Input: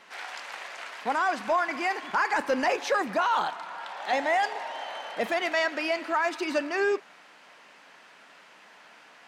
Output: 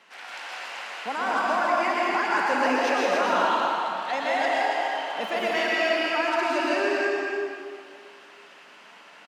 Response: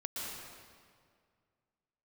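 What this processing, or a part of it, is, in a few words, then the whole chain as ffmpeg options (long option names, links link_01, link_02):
stadium PA: -filter_complex "[0:a]highpass=frequency=140:width=0.5412,highpass=frequency=140:width=1.3066,equalizer=frequency=2800:width_type=o:width=0.29:gain=4,aecho=1:1:160.3|279.9:0.251|0.501[link_01];[1:a]atrim=start_sample=2205[link_02];[link_01][link_02]afir=irnorm=-1:irlink=0"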